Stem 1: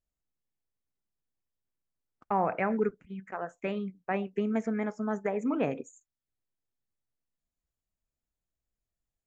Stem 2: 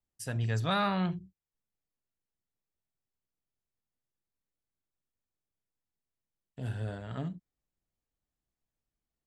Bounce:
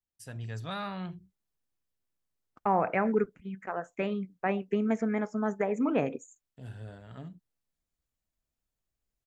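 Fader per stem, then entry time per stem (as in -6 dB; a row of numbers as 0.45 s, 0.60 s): +1.5 dB, -7.5 dB; 0.35 s, 0.00 s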